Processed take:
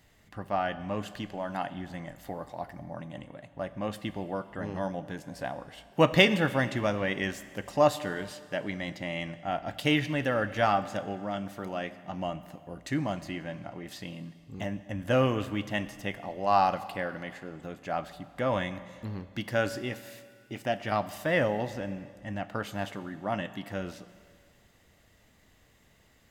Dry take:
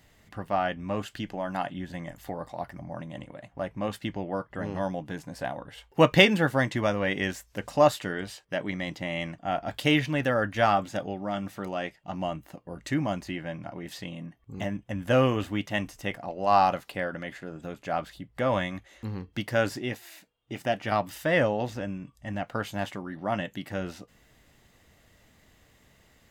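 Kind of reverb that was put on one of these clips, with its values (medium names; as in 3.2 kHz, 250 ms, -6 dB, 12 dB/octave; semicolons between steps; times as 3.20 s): Schroeder reverb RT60 2.1 s, combs from 30 ms, DRR 13.5 dB; trim -2.5 dB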